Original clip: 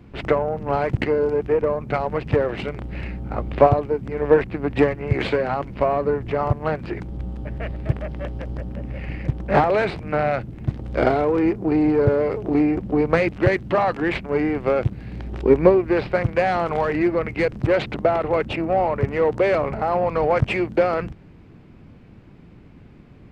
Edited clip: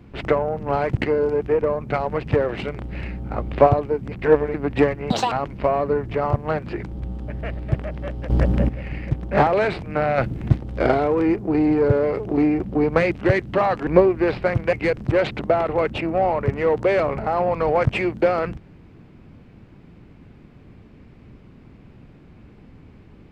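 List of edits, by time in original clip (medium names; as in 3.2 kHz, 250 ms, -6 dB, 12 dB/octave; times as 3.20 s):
4.12–4.54 s: reverse
5.10–5.49 s: speed 178%
8.47–8.86 s: gain +12 dB
10.35–10.74 s: gain +6.5 dB
14.04–15.56 s: delete
16.42–17.28 s: delete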